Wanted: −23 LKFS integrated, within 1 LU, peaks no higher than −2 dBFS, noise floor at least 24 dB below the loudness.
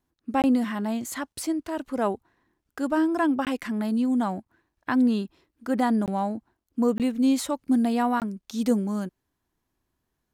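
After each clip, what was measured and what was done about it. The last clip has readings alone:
number of dropouts 5; longest dropout 18 ms; integrated loudness −26.0 LKFS; sample peak −11.0 dBFS; target loudness −23.0 LKFS
→ repair the gap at 0:00.42/0:03.45/0:06.06/0:06.98/0:08.20, 18 ms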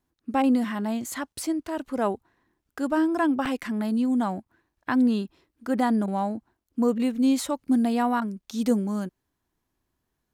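number of dropouts 0; integrated loudness −26.0 LKFS; sample peak −11.0 dBFS; target loudness −23.0 LKFS
→ level +3 dB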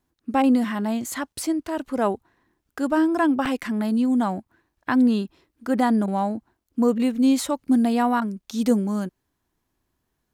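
integrated loudness −23.0 LKFS; sample peak −8.0 dBFS; background noise floor −77 dBFS

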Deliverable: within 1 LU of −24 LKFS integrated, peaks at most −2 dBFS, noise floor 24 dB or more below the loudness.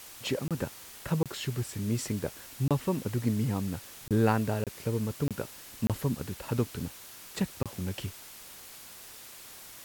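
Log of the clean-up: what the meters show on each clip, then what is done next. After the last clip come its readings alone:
number of dropouts 8; longest dropout 27 ms; background noise floor −48 dBFS; target noise floor −57 dBFS; integrated loudness −32.5 LKFS; sample peak −12.5 dBFS; target loudness −24.0 LKFS
→ repair the gap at 0:00.48/0:01.23/0:02.68/0:04.08/0:04.64/0:05.28/0:05.87/0:07.63, 27 ms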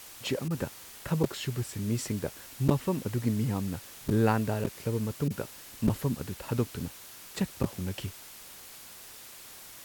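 number of dropouts 0; background noise floor −48 dBFS; target noise floor −56 dBFS
→ broadband denoise 8 dB, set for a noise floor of −48 dBFS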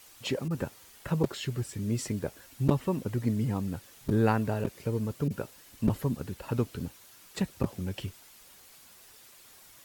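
background noise floor −55 dBFS; target noise floor −56 dBFS
→ broadband denoise 6 dB, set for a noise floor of −55 dBFS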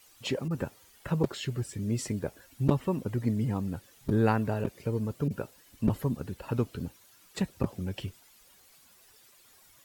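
background noise floor −60 dBFS; integrated loudness −32.0 LKFS; sample peak −8.0 dBFS; target loudness −24.0 LKFS
→ level +8 dB
brickwall limiter −2 dBFS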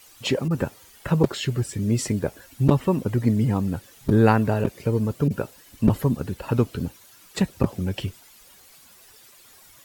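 integrated loudness −24.0 LKFS; sample peak −2.0 dBFS; background noise floor −52 dBFS

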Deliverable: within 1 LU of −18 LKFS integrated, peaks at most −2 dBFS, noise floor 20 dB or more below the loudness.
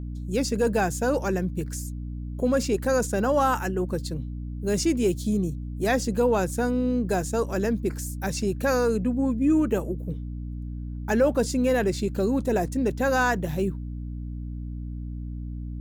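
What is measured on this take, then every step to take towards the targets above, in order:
mains hum 60 Hz; hum harmonics up to 300 Hz; level of the hum −31 dBFS; integrated loudness −26.0 LKFS; sample peak −11.5 dBFS; target loudness −18.0 LKFS
→ mains-hum notches 60/120/180/240/300 Hz
level +8 dB

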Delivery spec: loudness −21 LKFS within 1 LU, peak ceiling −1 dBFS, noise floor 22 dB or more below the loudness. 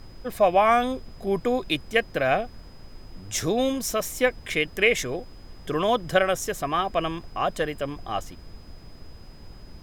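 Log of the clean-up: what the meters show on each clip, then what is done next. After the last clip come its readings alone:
interfering tone 5,000 Hz; level of the tone −56 dBFS; background noise floor −46 dBFS; target noise floor −47 dBFS; integrated loudness −25.0 LKFS; sample peak −6.0 dBFS; target loudness −21.0 LKFS
→ notch filter 5,000 Hz, Q 30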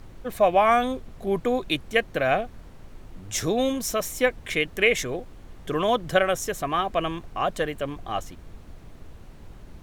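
interfering tone none found; background noise floor −46 dBFS; target noise floor −47 dBFS
→ noise reduction from a noise print 6 dB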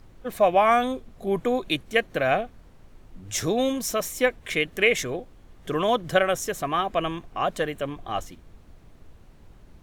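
background noise floor −52 dBFS; integrated loudness −25.0 LKFS; sample peak −6.0 dBFS; target loudness −21.0 LKFS
→ level +4 dB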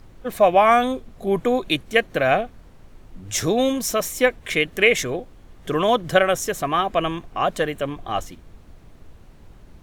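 integrated loudness −21.0 LKFS; sample peak −2.0 dBFS; background noise floor −48 dBFS

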